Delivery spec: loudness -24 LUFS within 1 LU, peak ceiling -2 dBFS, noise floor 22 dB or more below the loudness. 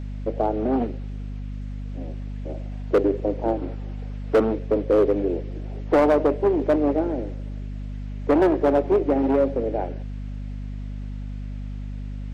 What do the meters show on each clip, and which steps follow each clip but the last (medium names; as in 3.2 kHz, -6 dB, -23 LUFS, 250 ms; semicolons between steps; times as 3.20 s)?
clipped samples 0.9%; clipping level -12.0 dBFS; hum 50 Hz; highest harmonic 250 Hz; hum level -29 dBFS; loudness -23.0 LUFS; peak level -12.0 dBFS; loudness target -24.0 LUFS
-> clip repair -12 dBFS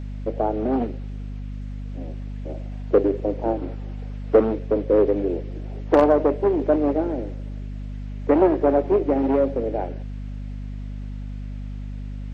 clipped samples 0.0%; hum 50 Hz; highest harmonic 250 Hz; hum level -29 dBFS
-> de-hum 50 Hz, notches 5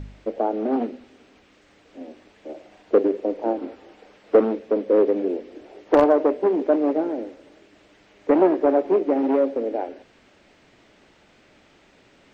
hum not found; loudness -21.5 LUFS; peak level -2.5 dBFS; loudness target -24.0 LUFS
-> trim -2.5 dB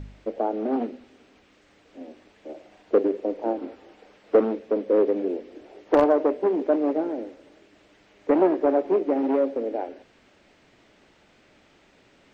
loudness -24.0 LUFS; peak level -5.0 dBFS; noise floor -59 dBFS